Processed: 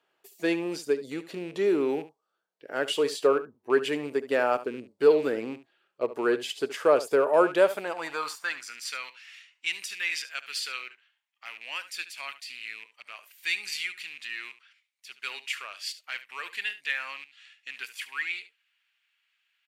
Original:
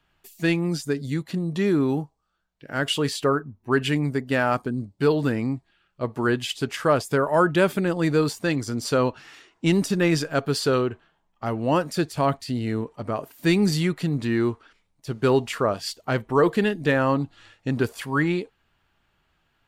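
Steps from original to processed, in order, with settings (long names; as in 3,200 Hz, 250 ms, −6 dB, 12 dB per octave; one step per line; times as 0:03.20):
loose part that buzzes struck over −28 dBFS, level −31 dBFS
low-shelf EQ 120 Hz +5.5 dB
single-tap delay 72 ms −15 dB
high-pass filter sweep 440 Hz → 2,300 Hz, 0:07.42–0:09.01
level −5.5 dB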